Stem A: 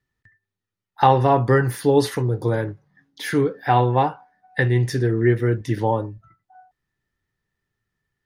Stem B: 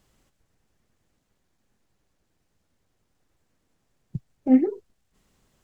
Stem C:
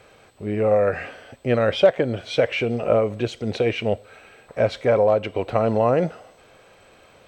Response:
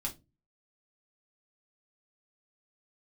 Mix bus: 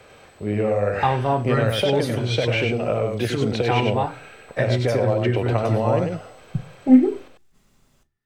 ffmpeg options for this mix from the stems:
-filter_complex "[0:a]volume=0.376,asplit=2[s0][s1];[s1]volume=0.596[s2];[1:a]adelay=2400,volume=1.26,asplit=2[s3][s4];[s4]volume=0.501[s5];[2:a]acrossover=split=140|3000[s6][s7][s8];[s7]acompressor=threshold=0.0708:ratio=6[s9];[s6][s9][s8]amix=inputs=3:normalize=0,volume=1.33,asplit=2[s10][s11];[s11]volume=0.631[s12];[3:a]atrim=start_sample=2205[s13];[s2][s5]amix=inputs=2:normalize=0[s14];[s14][s13]afir=irnorm=-1:irlink=0[s15];[s12]aecho=0:1:97:1[s16];[s0][s3][s10][s15][s16]amix=inputs=5:normalize=0"

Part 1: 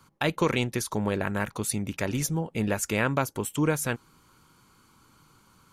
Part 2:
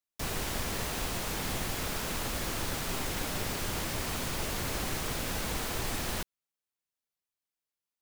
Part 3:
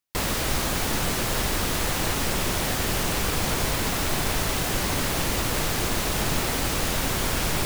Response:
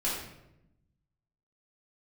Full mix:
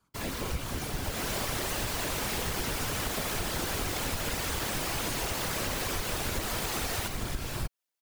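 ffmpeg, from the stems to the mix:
-filter_complex "[0:a]volume=0.335,asplit=2[s0][s1];[s1]volume=0.141[s2];[1:a]highpass=270,dynaudnorm=f=140:g=5:m=3.55,adelay=850,volume=0.944[s3];[2:a]volume=0.316,asplit=2[s4][s5];[s5]volume=0.631[s6];[3:a]atrim=start_sample=2205[s7];[s2][s6]amix=inputs=2:normalize=0[s8];[s8][s7]afir=irnorm=-1:irlink=0[s9];[s0][s3][s4][s9]amix=inputs=4:normalize=0,afftfilt=real='hypot(re,im)*cos(2*PI*random(0))':imag='hypot(re,im)*sin(2*PI*random(1))':win_size=512:overlap=0.75,acompressor=threshold=0.0398:ratio=6"

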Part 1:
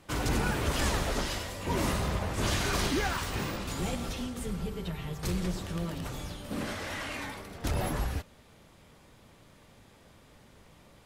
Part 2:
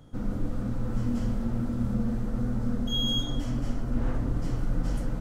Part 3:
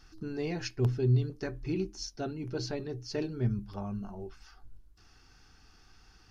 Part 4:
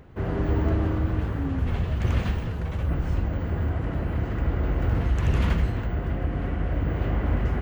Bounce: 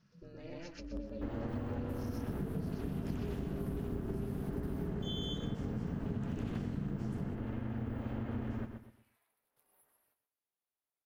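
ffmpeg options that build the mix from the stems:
-filter_complex "[0:a]highpass=460,alimiter=level_in=1.33:limit=0.0631:level=0:latency=1:release=245,volume=0.75,aexciter=amount=12.9:drive=5.1:freq=9700,adelay=1800,volume=0.224,asplit=2[s0][s1];[s1]volume=0.0631[s2];[1:a]adelay=2150,volume=0.944[s3];[2:a]volume=0.473,asplit=3[s4][s5][s6];[s5]volume=0.596[s7];[3:a]aemphasis=mode=production:type=cd,bandreject=f=2100:w=8.4,adelay=1050,volume=0.501,asplit=2[s8][s9];[s9]volume=0.266[s10];[s6]apad=whole_len=566953[s11];[s0][s11]sidechaingate=range=0.0224:threshold=0.00112:ratio=16:detection=peak[s12];[s12][s4]amix=inputs=2:normalize=0,flanger=delay=4.6:depth=7.7:regen=56:speed=0.32:shape=sinusoidal,alimiter=level_in=5.01:limit=0.0631:level=0:latency=1,volume=0.2,volume=1[s13];[s2][s7][s10]amix=inputs=3:normalize=0,aecho=0:1:124|248|372|496:1|0.29|0.0841|0.0244[s14];[s3][s8][s13][s14]amix=inputs=4:normalize=0,highshelf=f=5200:g=-6,aeval=exprs='val(0)*sin(2*PI*170*n/s)':c=same,acompressor=threshold=0.02:ratio=6"

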